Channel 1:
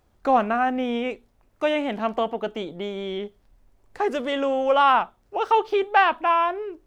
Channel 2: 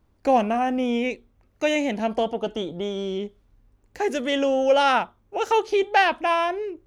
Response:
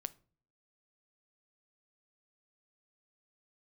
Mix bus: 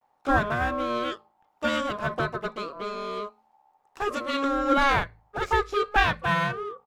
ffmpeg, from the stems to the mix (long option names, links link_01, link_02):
-filter_complex "[0:a]aeval=exprs='sgn(val(0))*max(abs(val(0))-0.015,0)':channel_layout=same,volume=-6.5dB[link_01];[1:a]aeval=exprs='val(0)*sin(2*PI*830*n/s)':channel_layout=same,volume=-1,adelay=13,volume=-4.5dB,asplit=2[link_02][link_03];[link_03]volume=-11dB[link_04];[2:a]atrim=start_sample=2205[link_05];[link_04][link_05]afir=irnorm=-1:irlink=0[link_06];[link_01][link_02][link_06]amix=inputs=3:normalize=0,bandreject=frequency=54.69:width_type=h:width=4,bandreject=frequency=109.38:width_type=h:width=4,bandreject=frequency=164.07:width_type=h:width=4,bandreject=frequency=218.76:width_type=h:width=4"